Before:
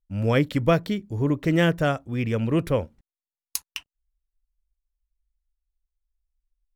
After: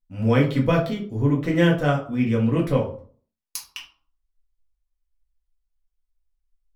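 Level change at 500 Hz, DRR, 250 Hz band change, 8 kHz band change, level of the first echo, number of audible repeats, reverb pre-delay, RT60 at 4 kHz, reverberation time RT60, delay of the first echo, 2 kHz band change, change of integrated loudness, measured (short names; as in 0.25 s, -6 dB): +1.5 dB, -3.0 dB, +3.0 dB, -2.5 dB, none, none, 4 ms, 0.30 s, 0.45 s, none, +0.5 dB, +2.5 dB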